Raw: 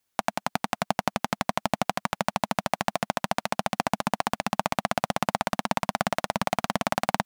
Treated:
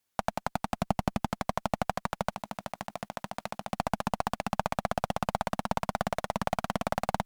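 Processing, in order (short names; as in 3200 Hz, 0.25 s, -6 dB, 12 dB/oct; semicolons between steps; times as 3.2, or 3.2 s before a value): 0.71–1.3 low shelf 200 Hz +10.5 dB; 2.32–3.71 negative-ratio compressor -33 dBFS, ratio -1; tube stage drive 10 dB, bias 0.55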